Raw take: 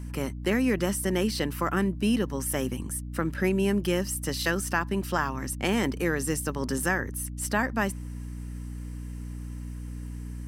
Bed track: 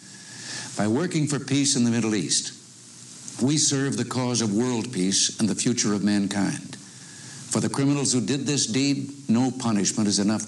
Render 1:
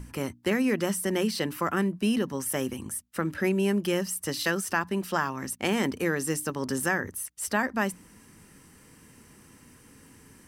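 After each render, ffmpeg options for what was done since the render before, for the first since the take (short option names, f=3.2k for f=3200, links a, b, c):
-af "bandreject=f=60:t=h:w=6,bandreject=f=120:t=h:w=6,bandreject=f=180:t=h:w=6,bandreject=f=240:t=h:w=6,bandreject=f=300:t=h:w=6"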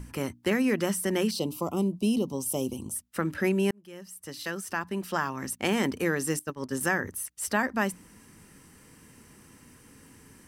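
-filter_complex "[0:a]asettb=1/sr,asplit=3[a][b][c];[a]atrim=end=1.314[d];[b]atrim=start=1.31:end=2.96,asetpts=PTS-STARTPTS,afade=t=in:d=0.004:c=qsin,afade=t=out:st=1.646:d=0.004:c=qsin,asuperstop=centerf=1700:order=4:qfactor=0.78[e];[c]atrim=start=2.956[f];[d][e]acrossfade=d=0.004:c1=hsin:c2=qsin[g];[g][f]acrossfade=d=0.004:c1=qsin:c2=hsin,asettb=1/sr,asplit=3[h][i][j];[h]atrim=end=6.394[k];[i]atrim=start=6.39:end=6.81,asetpts=PTS-STARTPTS,afade=t=in:d=0.004:c=qsin,afade=t=out:st=0.416:d=0.004:c=qsin,agate=range=-33dB:threshold=-27dB:ratio=3:release=100:detection=peak[l];[j]atrim=start=6.806[m];[k][l]acrossfade=d=0.004:c1=hsin:c2=qsin[n];[n][m]acrossfade=d=0.004:c1=qsin:c2=hsin,asplit=2[o][p];[o]atrim=end=3.71,asetpts=PTS-STARTPTS,afade=t=out:st=3.706:d=0.004:c=hsin[q];[p]atrim=start=3.71,asetpts=PTS-STARTPTS,afade=t=in:d=1.78[r];[q][r]concat=n=2:v=0:a=1"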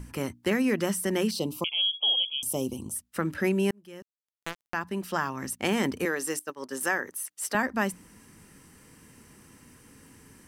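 -filter_complex "[0:a]asettb=1/sr,asplit=3[a][b][c];[a]atrim=end=1.644[d];[b]atrim=start=1.64:end=2.43,asetpts=PTS-STARTPTS,afade=t=in:d=0.004:c=qsin,afade=t=out:st=0.786:d=0.004:c=qsin,lowpass=f=3k:t=q:w=0.5098,lowpass=f=3k:t=q:w=0.6013,lowpass=f=3k:t=q:w=0.9,lowpass=f=3k:t=q:w=2.563,afreqshift=-3500[e];[c]atrim=start=2.426[f];[d][e]acrossfade=d=0.004:c1=hsin:c2=qsin[g];[g][f]acrossfade=d=0.004:c1=qsin:c2=hsin,asettb=1/sr,asplit=3[h][i][j];[h]atrim=end=4.024[k];[i]atrim=start=4.02:end=4.74,asetpts=PTS-STARTPTS,afade=t=in:d=0.004:c=qsin,afade=t=out:st=0.716:d=0.004:c=qsin,acrusher=bits=3:mix=0:aa=0.5[l];[j]atrim=start=4.736[m];[k][l]acrossfade=d=0.004:c1=hsin:c2=qsin[n];[n][m]acrossfade=d=0.004:c1=qsin:c2=hsin,asettb=1/sr,asplit=3[o][p][q];[o]atrim=end=6.054[r];[p]atrim=start=6.05:end=7.55,asetpts=PTS-STARTPTS,afade=t=in:d=0.004:c=qsin,afade=t=out:st=1.496:d=0.004:c=qsin,highpass=350[s];[q]atrim=start=7.546[t];[r][s]acrossfade=d=0.004:c1=hsin:c2=qsin[u];[u][t]acrossfade=d=0.004:c1=qsin:c2=hsin"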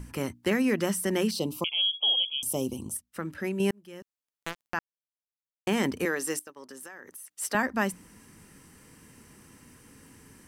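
-filter_complex "[0:a]asettb=1/sr,asplit=3[a][b][c];[a]atrim=end=6.424[d];[b]atrim=start=6.42:end=7.35,asetpts=PTS-STARTPTS,afade=t=in:d=0.004:c=qsin,afade=t=out:st=0.926:d=0.004:c=qsin,acompressor=threshold=-41dB:ratio=8:attack=3.2:release=140:knee=1:detection=peak[e];[c]atrim=start=7.346[f];[d][e]acrossfade=d=0.004:c1=hsin:c2=qsin[g];[g][f]acrossfade=d=0.004:c1=qsin:c2=hsin,asplit=5[h][i][j][k][l];[h]atrim=end=2.972[m];[i]atrim=start=2.968:end=3.602,asetpts=PTS-STARTPTS,volume=-6dB[n];[j]atrim=start=3.598:end=4.79,asetpts=PTS-STARTPTS,afade=t=out:st=1.188:d=0.004:c=hsin[o];[k]atrim=start=4.79:end=5.67,asetpts=PTS-STARTPTS,volume=0[p];[l]atrim=start=5.67,asetpts=PTS-STARTPTS,afade=t=in:d=0.004:c=hsin[q];[m][n]acrossfade=d=0.004:c1=hsin:c2=hsin[r];[o][p][q]concat=n=3:v=0:a=1[s];[r][s]acrossfade=d=0.004:c1=hsin:c2=hsin"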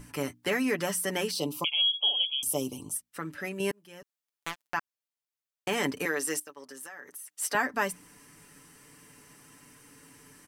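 -af "lowshelf=f=320:g=-8.5,aecho=1:1:6.9:0.61"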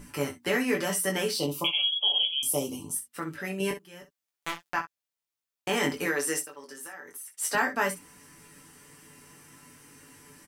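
-filter_complex "[0:a]asplit=2[a][b];[b]adelay=12,volume=-9dB[c];[a][c]amix=inputs=2:normalize=0,aecho=1:1:21|63:0.596|0.251"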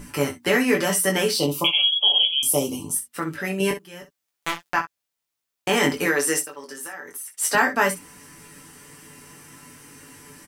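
-af "volume=7dB"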